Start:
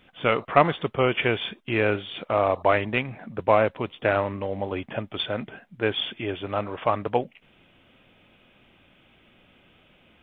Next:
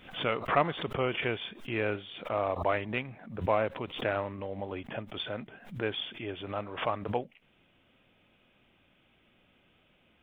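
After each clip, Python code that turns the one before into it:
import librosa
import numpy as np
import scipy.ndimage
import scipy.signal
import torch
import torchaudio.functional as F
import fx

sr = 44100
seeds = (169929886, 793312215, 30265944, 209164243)

y = fx.pre_swell(x, sr, db_per_s=110.0)
y = F.gain(torch.from_numpy(y), -8.5).numpy()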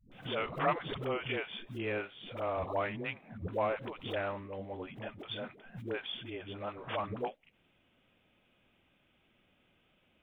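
y = fx.dispersion(x, sr, late='highs', ms=118.0, hz=350.0)
y = F.gain(torch.from_numpy(y), -4.5).numpy()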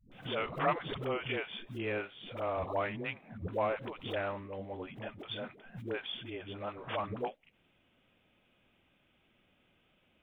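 y = x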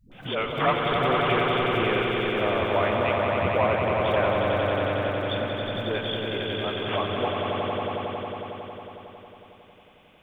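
y = fx.echo_swell(x, sr, ms=91, loudest=5, wet_db=-5)
y = F.gain(torch.from_numpy(y), 7.0).numpy()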